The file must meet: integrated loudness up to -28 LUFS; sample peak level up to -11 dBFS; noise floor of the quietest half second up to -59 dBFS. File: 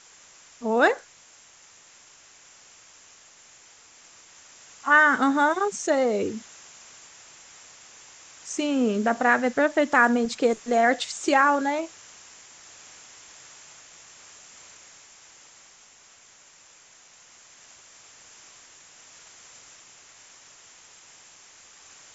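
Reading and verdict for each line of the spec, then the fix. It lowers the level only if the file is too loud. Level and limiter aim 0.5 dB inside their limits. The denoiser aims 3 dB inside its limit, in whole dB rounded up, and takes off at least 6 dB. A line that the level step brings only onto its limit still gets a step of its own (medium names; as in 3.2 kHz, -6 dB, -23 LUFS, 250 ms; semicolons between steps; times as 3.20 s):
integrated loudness -22.5 LUFS: fail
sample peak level -6.0 dBFS: fail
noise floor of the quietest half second -54 dBFS: fail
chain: trim -6 dB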